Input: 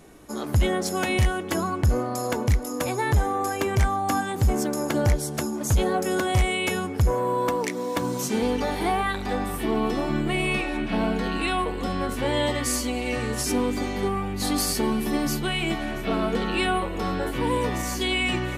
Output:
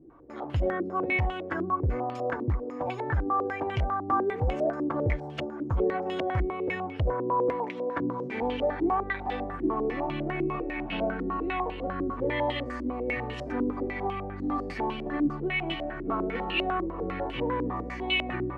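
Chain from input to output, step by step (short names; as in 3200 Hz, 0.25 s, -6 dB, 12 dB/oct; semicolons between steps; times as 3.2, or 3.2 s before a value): notch comb 210 Hz; painted sound rise, 4.11–4.73, 330–700 Hz -31 dBFS; stepped low-pass 10 Hz 330–2900 Hz; gain -7 dB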